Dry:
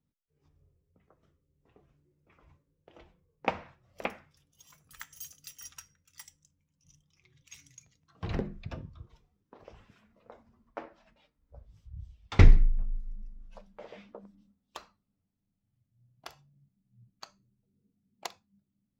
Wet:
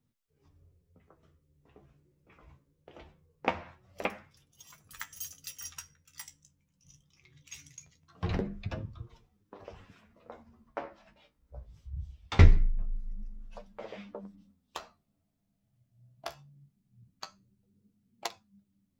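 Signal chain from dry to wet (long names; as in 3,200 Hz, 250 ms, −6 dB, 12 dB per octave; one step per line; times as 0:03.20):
0:14.79–0:16.29: parametric band 660 Hz +10 dB 0.34 octaves
in parallel at 0 dB: downward compressor, threshold −36 dBFS, peak gain reduction 23.5 dB
on the sum: flanger 0.22 Hz, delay 8.4 ms, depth 7.6 ms, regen +41%
level +2 dB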